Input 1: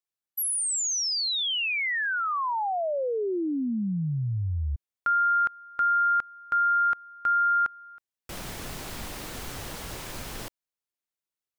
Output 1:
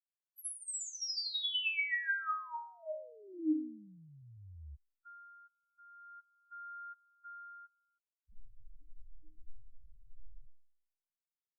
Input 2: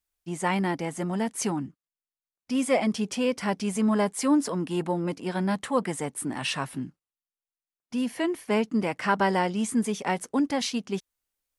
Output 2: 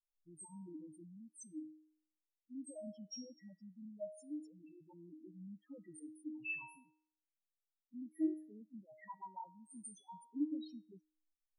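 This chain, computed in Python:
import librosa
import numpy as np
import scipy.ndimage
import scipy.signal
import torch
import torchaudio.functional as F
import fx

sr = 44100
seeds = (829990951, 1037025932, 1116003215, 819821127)

y = fx.spec_topn(x, sr, count=2)
y = fx.phaser_stages(y, sr, stages=2, low_hz=310.0, high_hz=1000.0, hz=0.4, feedback_pct=35)
y = fx.stiff_resonator(y, sr, f0_hz=310.0, decay_s=0.58, stiffness=0.002)
y = F.gain(torch.from_numpy(y), 11.5).numpy()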